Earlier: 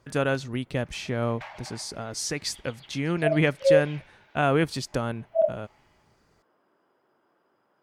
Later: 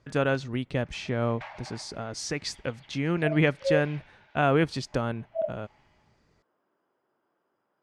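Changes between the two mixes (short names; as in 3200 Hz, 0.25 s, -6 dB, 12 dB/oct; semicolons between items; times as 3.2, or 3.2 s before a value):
second sound -7.0 dB; master: add air absorption 70 m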